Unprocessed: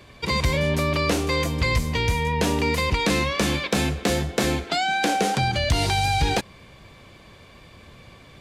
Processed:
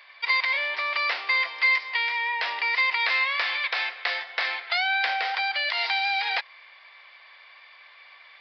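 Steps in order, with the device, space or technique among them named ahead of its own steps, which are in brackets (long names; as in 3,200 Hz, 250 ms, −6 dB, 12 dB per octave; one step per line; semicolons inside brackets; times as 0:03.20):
musical greeting card (downsampling to 11,025 Hz; high-pass filter 810 Hz 24 dB per octave; parametric band 2,000 Hz +9.5 dB 0.42 octaves)
level −1.5 dB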